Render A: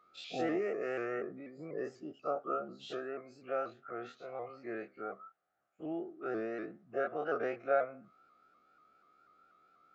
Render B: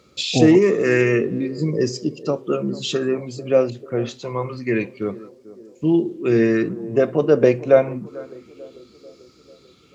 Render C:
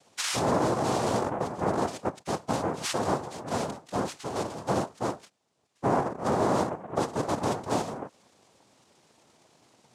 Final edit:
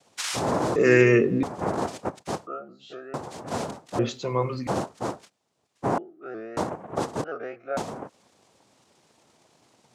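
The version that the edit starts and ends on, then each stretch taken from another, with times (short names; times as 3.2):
C
0.76–1.43 from B
2.47–3.14 from A
3.99–4.67 from B
5.98–6.57 from A
7.24–7.77 from A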